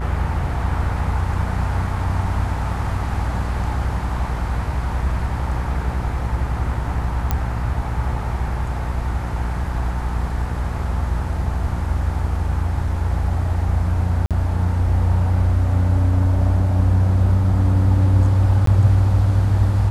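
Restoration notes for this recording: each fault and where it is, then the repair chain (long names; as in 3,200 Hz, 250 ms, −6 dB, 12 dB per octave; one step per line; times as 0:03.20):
mains buzz 60 Hz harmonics 31 −24 dBFS
0:07.31: click −7 dBFS
0:14.26–0:14.31: drop-out 47 ms
0:18.66–0:18.67: drop-out 13 ms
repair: click removal
hum removal 60 Hz, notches 31
repair the gap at 0:14.26, 47 ms
repair the gap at 0:18.66, 13 ms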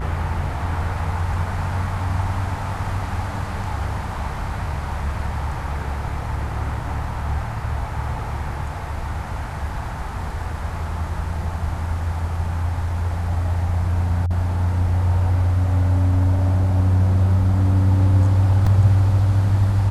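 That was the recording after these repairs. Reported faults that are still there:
none of them is left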